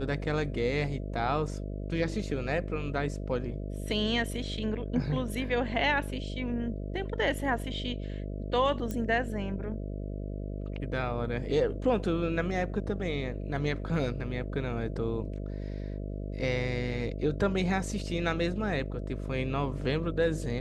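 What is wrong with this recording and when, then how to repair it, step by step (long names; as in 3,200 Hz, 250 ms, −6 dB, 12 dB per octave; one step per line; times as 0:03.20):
mains buzz 50 Hz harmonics 13 −36 dBFS
0:08.91: click −21 dBFS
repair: click removal
hum removal 50 Hz, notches 13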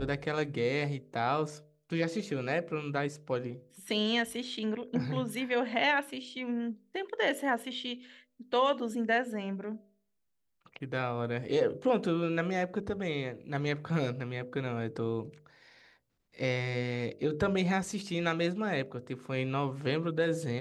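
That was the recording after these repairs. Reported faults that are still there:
none of them is left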